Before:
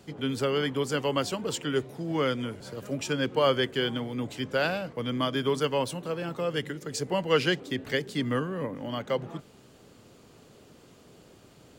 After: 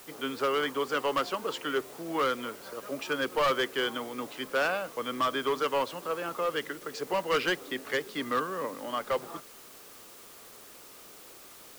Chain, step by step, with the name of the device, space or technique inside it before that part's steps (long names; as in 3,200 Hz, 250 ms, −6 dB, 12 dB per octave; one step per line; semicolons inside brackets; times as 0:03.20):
drive-through speaker (band-pass filter 360–3,700 Hz; parametric band 1,200 Hz +8 dB 0.52 octaves; hard clipping −22 dBFS, distortion −11 dB; white noise bed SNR 19 dB)